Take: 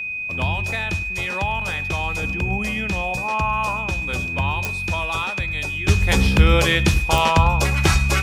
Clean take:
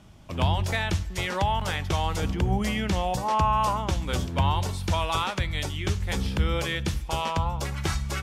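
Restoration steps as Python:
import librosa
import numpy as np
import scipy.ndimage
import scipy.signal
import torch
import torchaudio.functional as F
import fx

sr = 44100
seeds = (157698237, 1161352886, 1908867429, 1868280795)

y = fx.fix_declick_ar(x, sr, threshold=10.0)
y = fx.notch(y, sr, hz=2500.0, q=30.0)
y = fx.fix_echo_inverse(y, sr, delay_ms=103, level_db=-19.5)
y = fx.fix_level(y, sr, at_s=5.88, step_db=-10.5)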